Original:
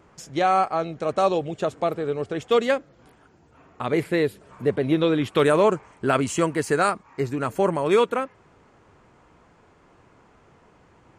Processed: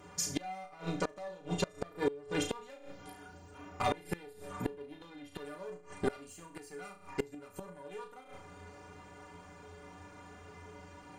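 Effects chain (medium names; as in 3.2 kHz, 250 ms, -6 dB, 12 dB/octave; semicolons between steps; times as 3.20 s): treble shelf 5.3 kHz +7 dB; hum notches 50/100 Hz; in parallel at -2 dB: compression 20:1, threshold -27 dBFS, peak gain reduction 14.5 dB; on the sum: one-sided clip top -23 dBFS; inharmonic resonator 87 Hz, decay 0.3 s, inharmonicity 0.03; flutter echo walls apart 6 m, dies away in 0.35 s; inverted gate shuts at -25 dBFS, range -25 dB; trim +6 dB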